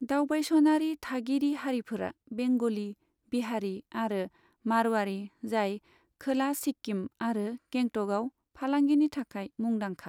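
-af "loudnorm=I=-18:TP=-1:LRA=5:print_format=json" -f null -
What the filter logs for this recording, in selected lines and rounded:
"input_i" : "-30.6",
"input_tp" : "-14.6",
"input_lra" : "3.1",
"input_thresh" : "-40.8",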